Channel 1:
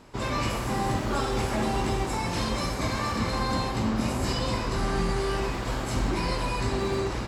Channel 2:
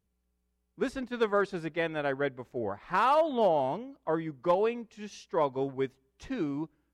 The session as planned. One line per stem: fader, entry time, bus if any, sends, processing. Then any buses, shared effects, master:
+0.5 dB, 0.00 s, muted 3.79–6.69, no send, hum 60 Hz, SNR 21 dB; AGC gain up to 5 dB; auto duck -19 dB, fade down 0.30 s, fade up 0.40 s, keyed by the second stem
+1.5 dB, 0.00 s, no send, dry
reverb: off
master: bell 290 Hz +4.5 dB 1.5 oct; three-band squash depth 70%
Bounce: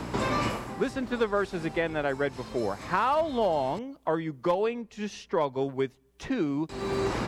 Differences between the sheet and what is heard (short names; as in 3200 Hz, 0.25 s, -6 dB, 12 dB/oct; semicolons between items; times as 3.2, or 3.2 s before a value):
stem 1: missing AGC gain up to 5 dB; master: missing bell 290 Hz +4.5 dB 1.5 oct